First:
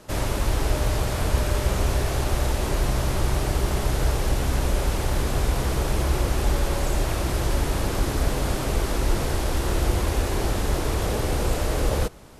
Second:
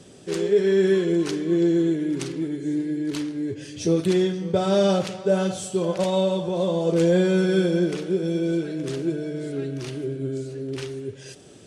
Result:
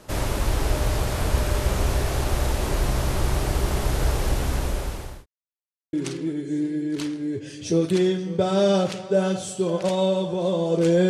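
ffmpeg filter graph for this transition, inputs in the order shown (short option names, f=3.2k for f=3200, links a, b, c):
-filter_complex "[0:a]apad=whole_dur=11.09,atrim=end=11.09,asplit=2[a][b];[a]atrim=end=5.26,asetpts=PTS-STARTPTS,afade=t=out:st=4.15:d=1.11:c=qsin[c];[b]atrim=start=5.26:end=5.93,asetpts=PTS-STARTPTS,volume=0[d];[1:a]atrim=start=2.08:end=7.24,asetpts=PTS-STARTPTS,afade=t=in:d=0.004:c=hsin[e];[c][d][e]concat=n=3:v=0:a=1"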